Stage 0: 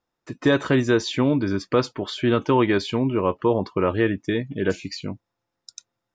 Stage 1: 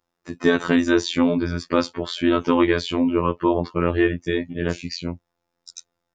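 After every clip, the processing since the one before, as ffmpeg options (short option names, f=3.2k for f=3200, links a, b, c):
-af "afftfilt=real='hypot(re,im)*cos(PI*b)':imag='0':win_size=2048:overlap=0.75,volume=5dB"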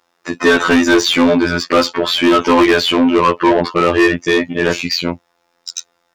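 -filter_complex "[0:a]asplit=2[a][b];[b]highpass=f=720:p=1,volume=25dB,asoftclip=type=tanh:threshold=-1.5dB[c];[a][c]amix=inputs=2:normalize=0,lowpass=f=5.9k:p=1,volume=-6dB"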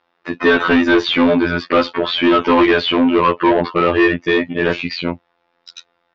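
-af "lowpass=f=3.8k:w=0.5412,lowpass=f=3.8k:w=1.3066,volume=-1.5dB"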